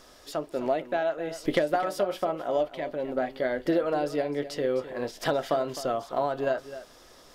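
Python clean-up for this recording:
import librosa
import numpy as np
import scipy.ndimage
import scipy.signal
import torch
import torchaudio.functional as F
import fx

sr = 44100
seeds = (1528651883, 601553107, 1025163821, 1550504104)

y = fx.fix_echo_inverse(x, sr, delay_ms=258, level_db=-13.5)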